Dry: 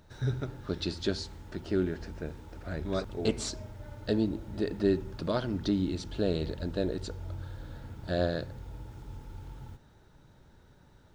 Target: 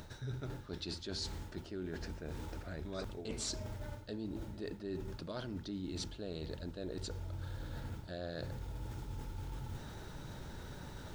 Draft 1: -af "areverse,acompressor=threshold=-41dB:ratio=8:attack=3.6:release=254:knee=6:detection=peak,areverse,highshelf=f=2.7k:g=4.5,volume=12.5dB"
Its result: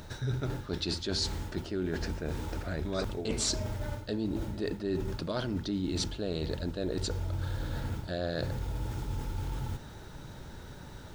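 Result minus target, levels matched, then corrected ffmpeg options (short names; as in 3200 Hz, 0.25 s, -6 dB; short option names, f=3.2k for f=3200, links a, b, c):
compressor: peak gain reduction -9 dB
-af "areverse,acompressor=threshold=-51.5dB:ratio=8:attack=3.6:release=254:knee=6:detection=peak,areverse,highshelf=f=2.7k:g=4.5,volume=12.5dB"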